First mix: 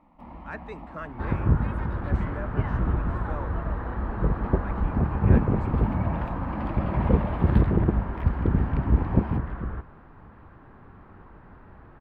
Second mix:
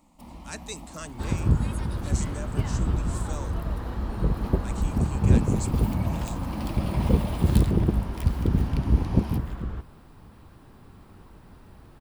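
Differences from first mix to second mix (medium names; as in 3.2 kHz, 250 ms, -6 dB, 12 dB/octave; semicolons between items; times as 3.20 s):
speech: add treble shelf 5.1 kHz +11 dB; master: remove FFT filter 230 Hz 0 dB, 1.7 kHz +6 dB, 7 kHz -29 dB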